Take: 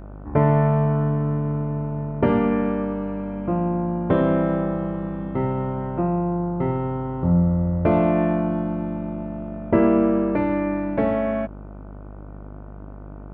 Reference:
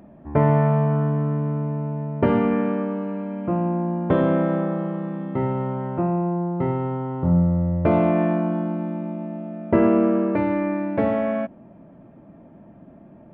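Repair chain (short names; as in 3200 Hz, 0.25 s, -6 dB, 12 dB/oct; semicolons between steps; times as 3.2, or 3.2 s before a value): de-hum 50.3 Hz, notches 30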